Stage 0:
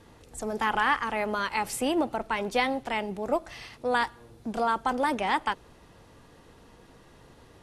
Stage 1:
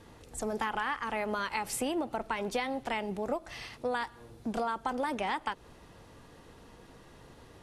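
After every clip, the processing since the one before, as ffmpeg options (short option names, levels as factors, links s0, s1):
-af "acompressor=threshold=0.0355:ratio=6"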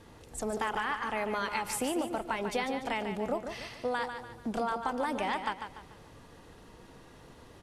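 -af "aecho=1:1:146|292|438|584|730:0.398|0.159|0.0637|0.0255|0.0102"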